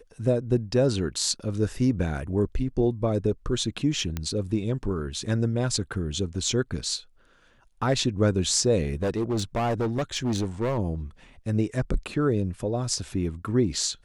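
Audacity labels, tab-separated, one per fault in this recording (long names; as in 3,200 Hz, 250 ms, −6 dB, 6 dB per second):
4.170000	4.170000	click −15 dBFS
8.820000	10.790000	clipping −22 dBFS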